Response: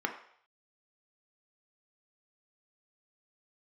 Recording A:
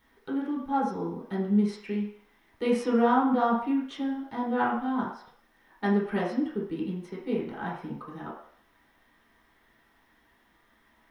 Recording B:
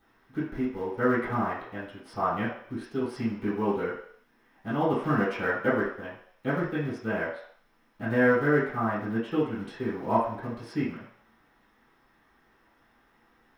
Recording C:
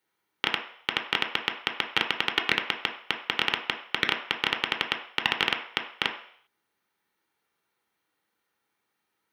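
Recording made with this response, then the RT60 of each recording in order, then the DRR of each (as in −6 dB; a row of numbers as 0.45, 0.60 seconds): C; 0.60, 0.60, 0.60 seconds; −6.5, −12.5, 3.5 decibels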